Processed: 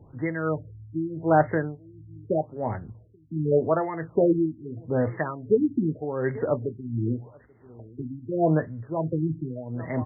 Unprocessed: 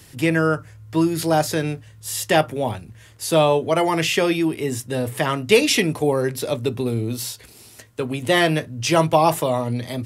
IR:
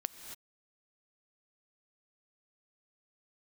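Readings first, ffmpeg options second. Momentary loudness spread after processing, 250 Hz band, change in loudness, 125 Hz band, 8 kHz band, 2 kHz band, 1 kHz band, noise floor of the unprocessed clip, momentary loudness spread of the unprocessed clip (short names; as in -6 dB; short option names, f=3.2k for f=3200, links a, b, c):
14 LU, -4.5 dB, -6.0 dB, -4.0 dB, under -40 dB, -12.5 dB, -8.0 dB, -47 dBFS, 11 LU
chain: -filter_complex "[0:a]highshelf=f=3.4k:g=7,asplit=2[a][b];[b]aecho=0:1:836:0.0708[c];[a][c]amix=inputs=2:normalize=0,tremolo=f=1.4:d=0.76,afftfilt=real='re*lt(b*sr/1024,330*pow(2200/330,0.5+0.5*sin(2*PI*0.83*pts/sr)))':imag='im*lt(b*sr/1024,330*pow(2200/330,0.5+0.5*sin(2*PI*0.83*pts/sr)))':win_size=1024:overlap=0.75"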